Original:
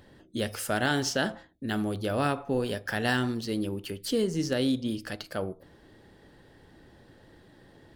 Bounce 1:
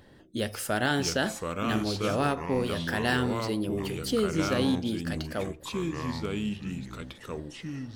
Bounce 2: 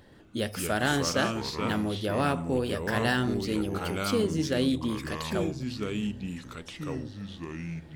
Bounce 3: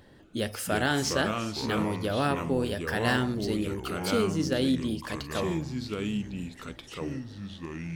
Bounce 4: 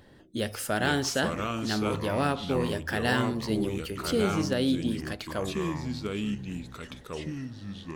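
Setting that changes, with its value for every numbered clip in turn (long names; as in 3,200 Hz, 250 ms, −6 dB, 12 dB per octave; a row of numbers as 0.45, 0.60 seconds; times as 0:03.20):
delay with pitch and tempo change per echo, delay time: 546, 125, 230, 358 milliseconds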